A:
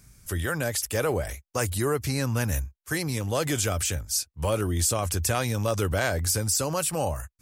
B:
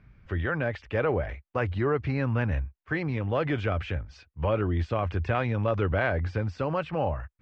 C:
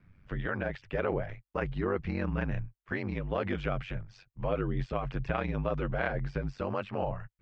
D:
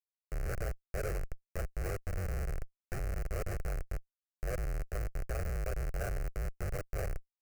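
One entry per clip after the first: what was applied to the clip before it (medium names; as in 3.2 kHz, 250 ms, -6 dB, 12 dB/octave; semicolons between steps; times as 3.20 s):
inverse Chebyshev low-pass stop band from 10 kHz, stop band 70 dB
ring modulator 48 Hz; trim -2 dB
Schmitt trigger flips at -29 dBFS; static phaser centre 950 Hz, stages 6; trim +1 dB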